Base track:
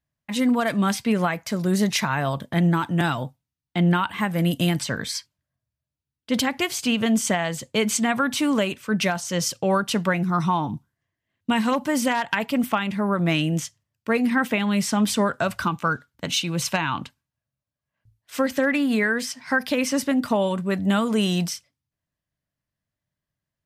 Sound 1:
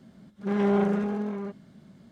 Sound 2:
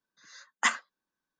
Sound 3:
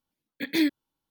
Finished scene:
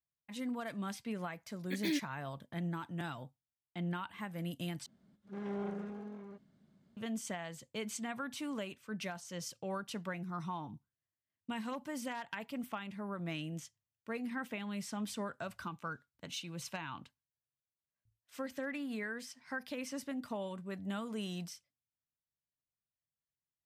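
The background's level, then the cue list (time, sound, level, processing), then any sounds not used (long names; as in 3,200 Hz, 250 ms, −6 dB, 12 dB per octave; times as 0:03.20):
base track −18.5 dB
0:01.30: mix in 3 −9 dB + brickwall limiter −16.5 dBFS
0:04.86: overwrite with 1 −16 dB
not used: 2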